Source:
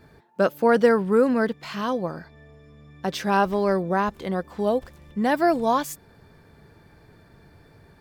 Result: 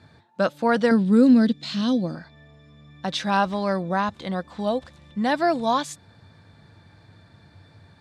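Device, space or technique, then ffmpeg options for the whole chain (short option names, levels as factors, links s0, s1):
car door speaker: -filter_complex "[0:a]highpass=88,equalizer=f=98:t=q:w=4:g=10,equalizer=f=410:t=q:w=4:g=-10,equalizer=f=3800:t=q:w=4:g=9,lowpass=f=9300:w=0.5412,lowpass=f=9300:w=1.3066,asettb=1/sr,asplit=3[s0][s1][s2];[s0]atrim=end=0.914[s3];[s1]atrim=start=0.91:end=2.15,asetpts=PTS-STARTPTS,afade=t=in:d=0.004:c=qsin,afade=t=out:st=1.236:d=0.004:c=qsin,equalizer=f=250:t=o:w=1:g=10,equalizer=f=1000:t=o:w=1:g=-10,equalizer=f=2000:t=o:w=1:g=-4,equalizer=f=4000:t=o:w=1:g=5,equalizer=f=8000:t=o:w=1:g=3[s4];[s2]atrim=start=2.146[s5];[s3][s4]acrossfade=d=0.004:c1=hsin:c2=qsin[s6];[s6][s5]acrossfade=d=0.004:c1=qsin:c2=hsin"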